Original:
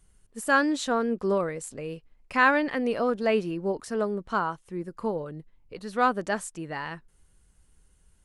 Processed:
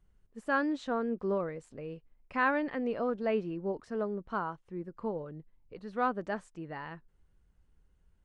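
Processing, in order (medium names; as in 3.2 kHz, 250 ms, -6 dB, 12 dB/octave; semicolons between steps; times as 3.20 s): tape spacing loss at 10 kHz 23 dB; trim -5 dB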